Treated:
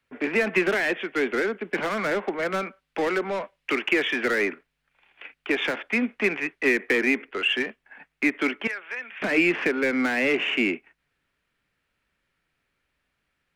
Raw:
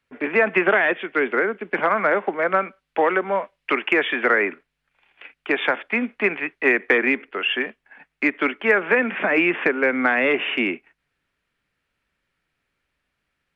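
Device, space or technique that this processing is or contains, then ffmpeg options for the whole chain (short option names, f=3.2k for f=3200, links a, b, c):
one-band saturation: -filter_complex "[0:a]asettb=1/sr,asplit=3[a][b][c];[a]atrim=end=8.674[d];[b]atrim=start=8.67:end=9.22,asetpts=PTS-STARTPTS,afade=t=in:d=0.004:c=qsin,afade=t=out:st=0.546:d=0.004:c=qsin,aderivative[e];[c]atrim=start=9.216[f];[d][e]acrossfade=d=0.004:c1=hsin:c2=qsin[g];[g][f]acrossfade=d=0.004:c1=qsin:c2=hsin,acrossover=split=420|2100[h][i][j];[i]asoftclip=type=tanh:threshold=-30dB[k];[h][k][j]amix=inputs=3:normalize=0"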